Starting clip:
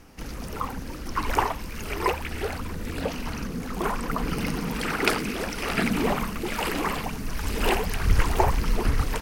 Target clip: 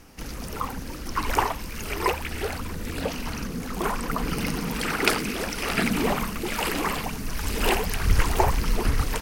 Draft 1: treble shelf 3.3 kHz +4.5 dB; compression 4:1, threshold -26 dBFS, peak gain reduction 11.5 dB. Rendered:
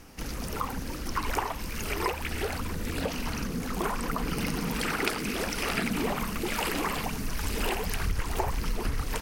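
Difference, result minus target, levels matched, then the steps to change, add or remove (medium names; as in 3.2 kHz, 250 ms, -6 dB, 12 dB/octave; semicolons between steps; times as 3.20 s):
compression: peak gain reduction +11.5 dB
remove: compression 4:1, threshold -26 dBFS, peak gain reduction 11.5 dB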